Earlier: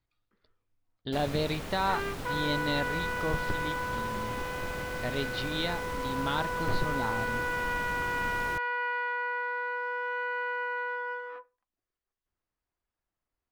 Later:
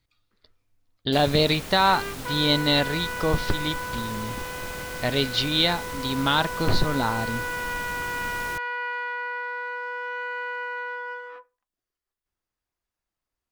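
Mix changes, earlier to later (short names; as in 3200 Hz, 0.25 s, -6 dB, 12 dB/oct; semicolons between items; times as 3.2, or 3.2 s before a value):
speech +8.5 dB; master: add high shelf 3600 Hz +10 dB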